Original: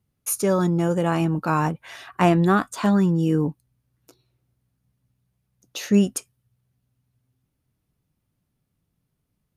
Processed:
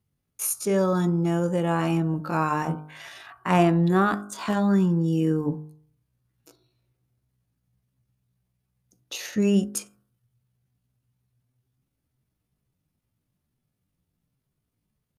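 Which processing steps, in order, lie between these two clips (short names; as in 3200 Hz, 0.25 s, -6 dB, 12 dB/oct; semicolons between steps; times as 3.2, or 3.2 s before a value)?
tempo 0.63×; de-hum 51.09 Hz, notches 31; gain -2 dB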